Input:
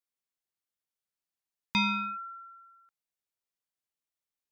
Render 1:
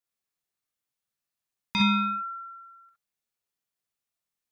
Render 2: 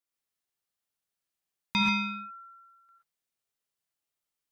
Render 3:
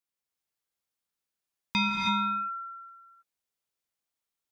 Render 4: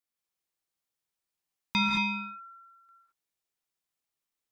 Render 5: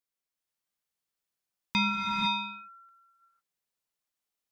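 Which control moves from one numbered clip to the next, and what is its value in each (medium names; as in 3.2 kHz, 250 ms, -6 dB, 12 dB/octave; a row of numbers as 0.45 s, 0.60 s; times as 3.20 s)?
gated-style reverb, gate: 80 ms, 150 ms, 350 ms, 240 ms, 530 ms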